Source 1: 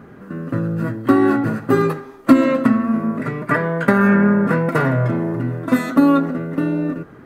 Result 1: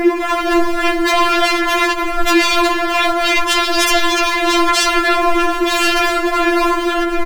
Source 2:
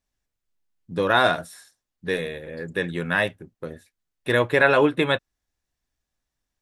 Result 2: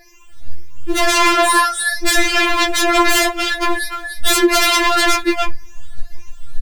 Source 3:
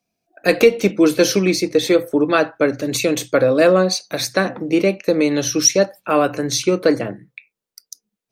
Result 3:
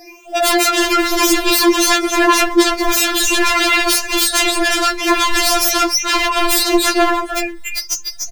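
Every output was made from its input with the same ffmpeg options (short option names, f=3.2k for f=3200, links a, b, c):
-filter_complex "[0:a]afftfilt=real='re*pow(10,23/40*sin(2*PI*(0.76*log(max(b,1)*sr/1024/100)/log(2)-(1.8)*(pts-256)/sr)))':imag='im*pow(10,23/40*sin(2*PI*(0.76*log(max(b,1)*sr/1024/100)/log(2)-(1.8)*(pts-256)/sr)))':win_size=1024:overlap=0.75,asplit=2[a][b];[b]acrusher=bits=2:mode=log:mix=0:aa=0.000001,volume=-7.5dB[c];[a][c]amix=inputs=2:normalize=0,acompressor=threshold=-23dB:ratio=4,asubboost=boost=10:cutoff=93,flanger=delay=6.2:depth=4.7:regen=-53:speed=0.84:shape=sinusoidal,asplit=2[d][e];[e]aecho=0:1:295:0.355[f];[d][f]amix=inputs=2:normalize=0,acrossover=split=430[g][h];[g]acompressor=threshold=-33dB:ratio=1.5[i];[i][h]amix=inputs=2:normalize=0,highshelf=f=6.5k:g=-9,aeval=exprs='0.168*sin(PI/2*7.94*val(0)/0.168)':c=same,alimiter=level_in=21.5dB:limit=-1dB:release=50:level=0:latency=1,afftfilt=real='re*4*eq(mod(b,16),0)':imag='im*4*eq(mod(b,16),0)':win_size=2048:overlap=0.75,volume=-7.5dB"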